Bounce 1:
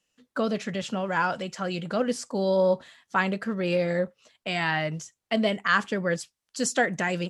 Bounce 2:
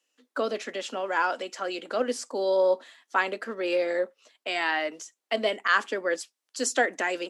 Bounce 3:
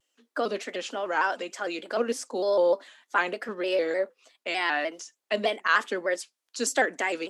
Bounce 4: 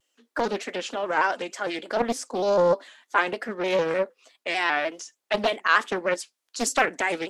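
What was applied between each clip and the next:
steep high-pass 260 Hz 48 dB/octave
vibrato with a chosen wave square 3.3 Hz, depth 100 cents
loudspeaker Doppler distortion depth 0.53 ms; trim +2.5 dB

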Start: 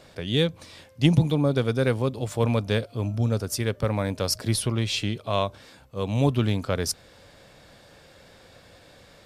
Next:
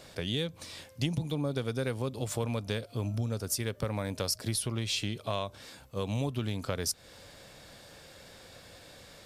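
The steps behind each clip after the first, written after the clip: treble shelf 4.2 kHz +7.5 dB; compression 6:1, threshold -27 dBFS, peak gain reduction 13 dB; trim -1.5 dB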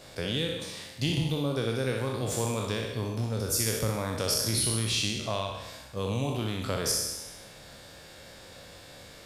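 spectral sustain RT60 1.09 s; on a send: flutter echo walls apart 10.7 m, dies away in 0.46 s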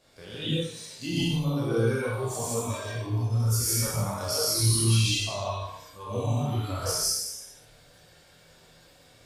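chorus voices 4, 0.22 Hz, delay 29 ms, depth 4 ms; gated-style reverb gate 190 ms rising, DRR -4 dB; spectral noise reduction 10 dB

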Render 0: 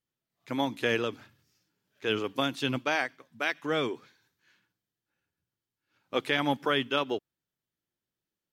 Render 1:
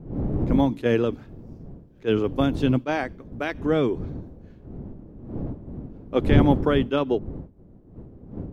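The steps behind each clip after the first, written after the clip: wind noise 290 Hz -41 dBFS; tilt shelf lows +9 dB, about 820 Hz; attacks held to a fixed rise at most 440 dB/s; trim +3.5 dB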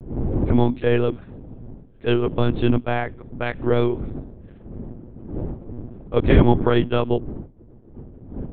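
monotone LPC vocoder at 8 kHz 120 Hz; trim +3 dB

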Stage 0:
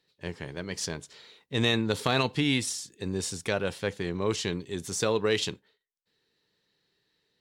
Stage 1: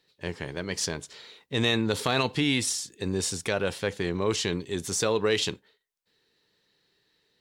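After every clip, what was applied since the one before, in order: peaking EQ 150 Hz -2.5 dB 1.5 oct; in parallel at +2.5 dB: peak limiter -22.5 dBFS, peak gain reduction 10.5 dB; on the sum: trim -3 dB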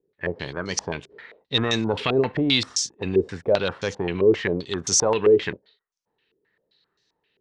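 waveshaping leveller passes 1; step-sequenced low-pass 7.6 Hz 400–6000 Hz; trim -1.5 dB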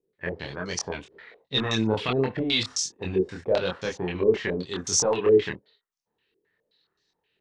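chorus voices 2, 1.3 Hz, delay 25 ms, depth 3 ms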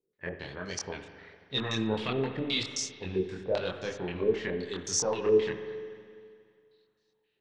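reverberation RT60 2.2 s, pre-delay 41 ms, DRR 8 dB; trim -6 dB

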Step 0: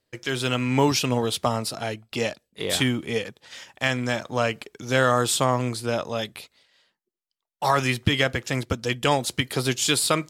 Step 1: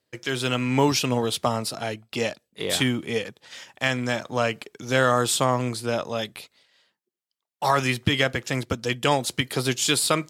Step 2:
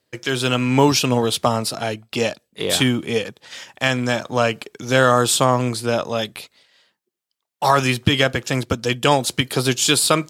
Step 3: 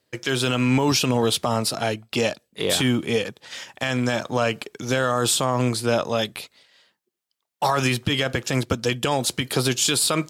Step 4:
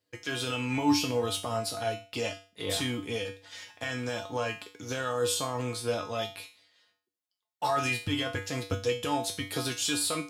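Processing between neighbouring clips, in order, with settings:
high-pass 89 Hz
dynamic bell 2 kHz, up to -6 dB, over -46 dBFS, Q 6.6; trim +5.5 dB
peak limiter -10.5 dBFS, peak gain reduction 9.5 dB
feedback comb 97 Hz, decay 0.36 s, harmonics odd, mix 90%; trim +3 dB

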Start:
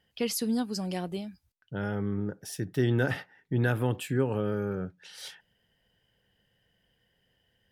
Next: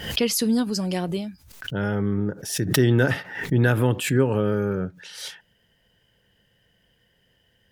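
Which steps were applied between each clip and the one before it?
peaking EQ 6.5 kHz +2 dB 0.37 oct; band-stop 770 Hz, Q 12; swell ahead of each attack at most 84 dB/s; trim +7 dB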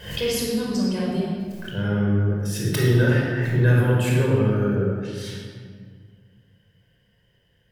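simulated room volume 2500 m³, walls mixed, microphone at 5.2 m; trim -9 dB

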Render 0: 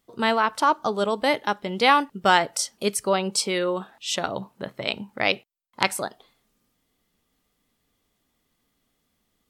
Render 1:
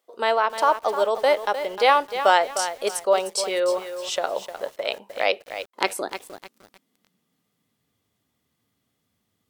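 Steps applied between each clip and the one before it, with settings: high-pass sweep 530 Hz -> 100 Hz, 5.26–8.03 s; bit-crushed delay 305 ms, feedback 35%, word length 6-bit, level -10 dB; trim -2.5 dB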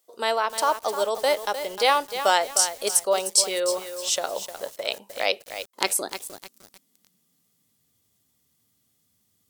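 tone controls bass +4 dB, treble +14 dB; trim -3.5 dB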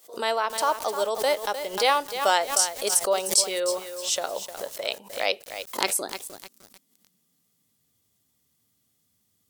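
swell ahead of each attack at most 140 dB/s; trim -1.5 dB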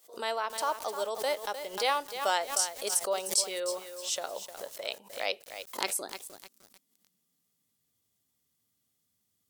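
bass shelf 320 Hz -3 dB; trim -6.5 dB

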